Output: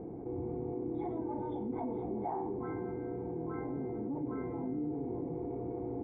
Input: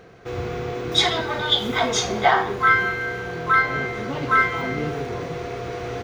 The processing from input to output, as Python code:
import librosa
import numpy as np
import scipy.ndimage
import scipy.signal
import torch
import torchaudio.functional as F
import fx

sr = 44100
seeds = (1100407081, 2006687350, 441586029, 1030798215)

y = fx.formant_cascade(x, sr, vowel='u')
y = y + 10.0 ** (-21.5 / 20.0) * np.pad(y, (int(440 * sr / 1000.0), 0))[:len(y)]
y = fx.env_flatten(y, sr, amount_pct=70)
y = F.gain(torch.from_numpy(y), -5.5).numpy()